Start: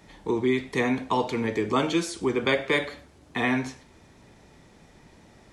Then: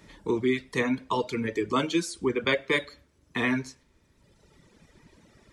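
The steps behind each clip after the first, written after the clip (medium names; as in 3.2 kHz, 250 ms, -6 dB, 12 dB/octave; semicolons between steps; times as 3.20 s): reverb removal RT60 1.6 s; peaking EQ 760 Hz -10.5 dB 0.3 oct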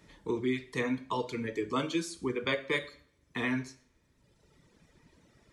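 two-slope reverb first 0.49 s, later 1.6 s, from -28 dB, DRR 11 dB; trim -6 dB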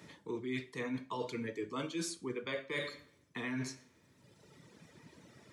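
reverse; compression 12:1, threshold -40 dBFS, peak gain reduction 15 dB; reverse; high-pass 97 Hz 24 dB/octave; trim +5 dB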